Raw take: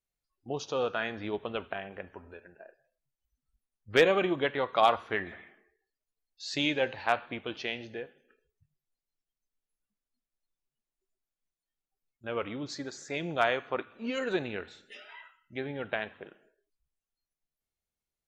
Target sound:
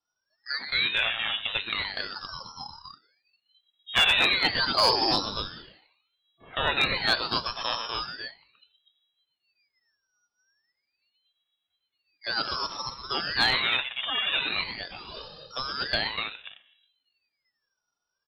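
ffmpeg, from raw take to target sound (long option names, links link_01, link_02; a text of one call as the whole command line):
ffmpeg -i in.wav -filter_complex "[0:a]equalizer=frequency=680:width_type=o:width=0.39:gain=4.5,aecho=1:1:1.9:0.48,asplit=2[link_01][link_02];[link_02]asoftclip=type=tanh:threshold=-18.5dB,volume=-9dB[link_03];[link_01][link_03]amix=inputs=2:normalize=0,lowpass=frequency=3100:width_type=q:width=0.5098,lowpass=frequency=3100:width_type=q:width=0.6013,lowpass=frequency=3100:width_type=q:width=0.9,lowpass=frequency=3100:width_type=q:width=2.563,afreqshift=-3600,acrossover=split=2600[link_04][link_05];[link_05]acompressor=threshold=-37dB:ratio=4:attack=1:release=60[link_06];[link_04][link_06]amix=inputs=2:normalize=0,aecho=1:1:122.4|244.9:0.398|0.562,acontrast=49,asoftclip=type=hard:threshold=-12dB,aeval=exprs='val(0)*sin(2*PI*1200*n/s+1200*0.8/0.39*sin(2*PI*0.39*n/s))':channel_layout=same" out.wav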